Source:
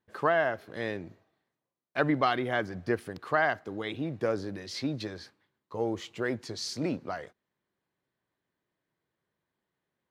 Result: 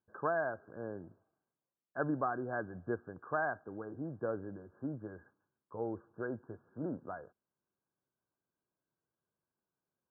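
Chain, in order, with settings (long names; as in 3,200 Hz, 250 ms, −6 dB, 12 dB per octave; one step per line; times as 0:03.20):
de-essing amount 95%
linear-phase brick-wall low-pass 1,700 Hz
level −7.5 dB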